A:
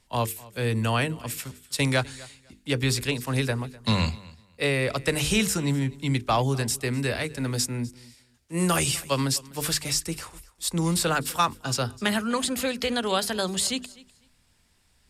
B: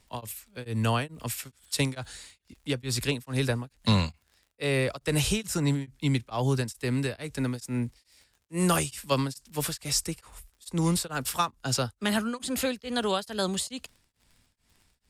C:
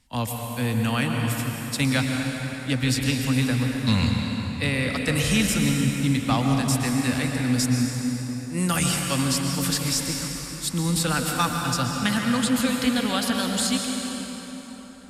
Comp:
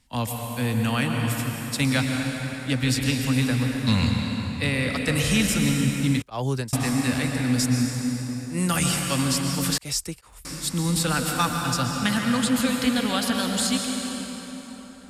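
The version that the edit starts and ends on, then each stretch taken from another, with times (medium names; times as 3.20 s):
C
6.22–6.73 s: from B
9.78–10.45 s: from B
not used: A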